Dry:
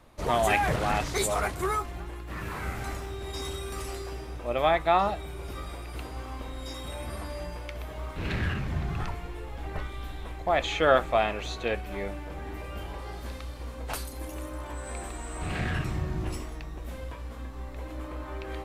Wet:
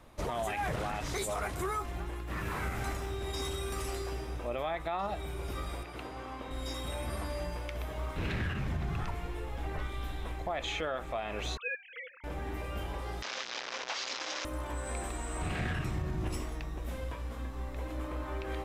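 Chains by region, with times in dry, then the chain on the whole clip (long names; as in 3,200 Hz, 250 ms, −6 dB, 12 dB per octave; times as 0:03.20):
0:05.83–0:06.51: high-pass filter 200 Hz 6 dB per octave + high-shelf EQ 5,900 Hz −11.5 dB
0:11.57–0:12.24: three sine waves on the formant tracks + Chebyshev band-stop filter 340–1,300 Hz
0:13.22–0:14.45: linear delta modulator 32 kbit/s, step −30 dBFS + high-pass filter 410 Hz + tilt shelving filter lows −5.5 dB, about 810 Hz
whole clip: notch filter 4,400 Hz, Q 22; downward compressor 2.5 to 1, threshold −29 dBFS; brickwall limiter −25.5 dBFS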